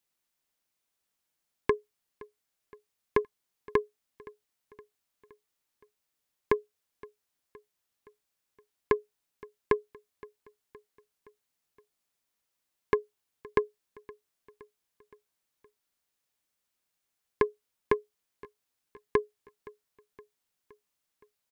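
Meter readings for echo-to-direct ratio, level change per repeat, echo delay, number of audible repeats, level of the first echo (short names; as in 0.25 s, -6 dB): -20.5 dB, -5.0 dB, 0.518 s, 3, -22.0 dB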